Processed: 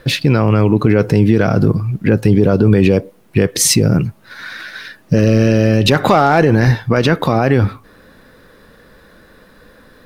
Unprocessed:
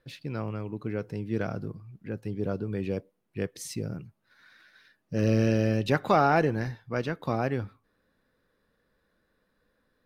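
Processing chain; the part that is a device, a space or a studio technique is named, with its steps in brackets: loud club master (compression 1.5:1, threshold -32 dBFS, peak gain reduction 5.5 dB; hard clipper -18 dBFS, distortion -29 dB; loudness maximiser +28.5 dB); trim -1 dB

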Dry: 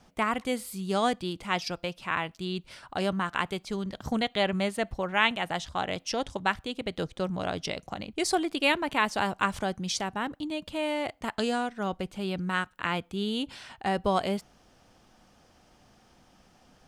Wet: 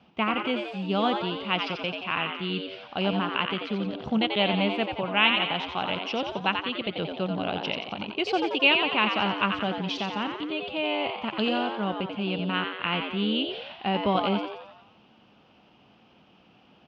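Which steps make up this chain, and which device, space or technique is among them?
13.28–13.74 s: low-pass 7.6 kHz -> 4.3 kHz; frequency-shifting delay pedal into a guitar cabinet (frequency-shifting echo 88 ms, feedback 54%, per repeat +100 Hz, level -5.5 dB; cabinet simulation 100–3800 Hz, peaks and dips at 210 Hz +5 dB, 1.8 kHz -6 dB, 2.9 kHz +6 dB); peaking EQ 2.6 kHz +5.5 dB 0.31 oct

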